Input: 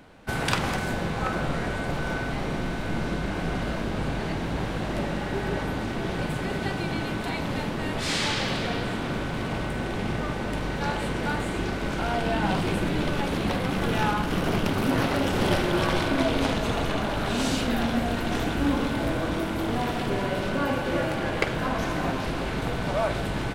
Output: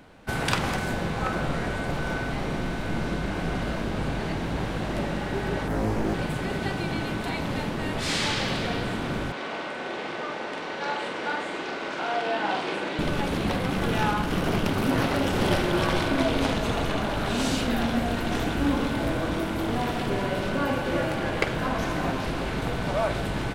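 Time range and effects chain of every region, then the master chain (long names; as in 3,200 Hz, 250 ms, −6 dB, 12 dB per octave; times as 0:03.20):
0:05.68–0:06.14: parametric band 2,900 Hz −9.5 dB 1.4 octaves + flutter between parallel walls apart 3.2 metres, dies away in 0.51 s + highs frequency-modulated by the lows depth 0.63 ms
0:09.32–0:12.99: band-pass filter 410–5,600 Hz + double-tracking delay 44 ms −6 dB
whole clip: no processing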